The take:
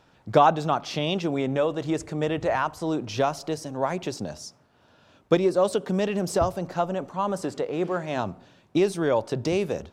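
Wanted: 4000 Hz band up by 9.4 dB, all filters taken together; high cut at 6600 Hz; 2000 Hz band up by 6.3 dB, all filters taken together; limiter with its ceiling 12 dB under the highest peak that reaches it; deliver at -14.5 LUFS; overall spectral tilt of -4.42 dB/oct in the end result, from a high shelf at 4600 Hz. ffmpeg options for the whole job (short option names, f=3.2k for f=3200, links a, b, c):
-af "lowpass=6.6k,equalizer=f=2k:t=o:g=5,equalizer=f=4k:t=o:g=7.5,highshelf=f=4.6k:g=7,volume=12.5dB,alimiter=limit=-1.5dB:level=0:latency=1"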